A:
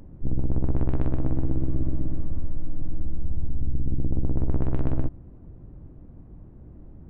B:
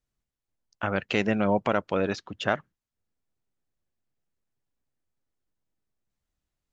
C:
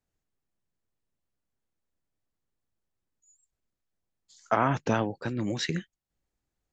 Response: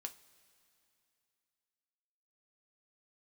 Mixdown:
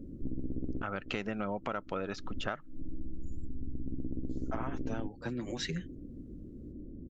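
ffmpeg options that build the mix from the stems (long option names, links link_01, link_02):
-filter_complex "[0:a]firequalizer=gain_entry='entry(150,0);entry(250,12);entry(550,2);entry(800,-22);entry(1500,-16)':delay=0.05:min_phase=1,volume=-4dB[link_01];[1:a]equalizer=frequency=1300:width_type=o:width=0.2:gain=8.5,volume=0dB,asplit=2[link_02][link_03];[2:a]dynaudnorm=framelen=430:gausssize=7:maxgain=14dB,asplit=2[link_04][link_05];[link_05]adelay=7.3,afreqshift=0.66[link_06];[link_04][link_06]amix=inputs=2:normalize=1,volume=-7dB[link_07];[link_03]apad=whole_len=317079[link_08];[link_01][link_08]sidechaincompress=threshold=-39dB:ratio=12:attack=9:release=267[link_09];[link_09][link_02][link_07]amix=inputs=3:normalize=0,acompressor=threshold=-32dB:ratio=6"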